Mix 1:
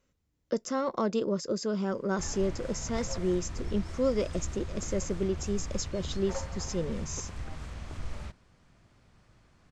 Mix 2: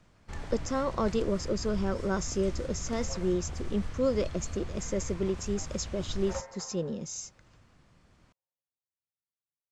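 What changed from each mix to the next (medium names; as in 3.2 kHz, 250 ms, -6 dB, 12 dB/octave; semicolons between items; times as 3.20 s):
first sound: entry -1.90 s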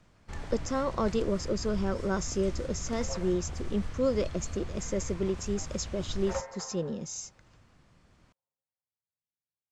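second sound +3.5 dB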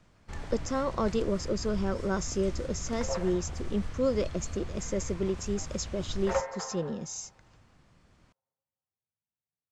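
second sound +6.0 dB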